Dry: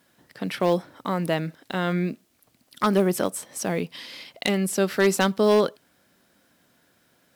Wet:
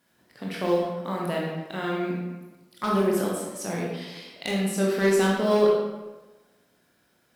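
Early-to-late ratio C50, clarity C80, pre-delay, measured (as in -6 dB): 0.5 dB, 3.5 dB, 17 ms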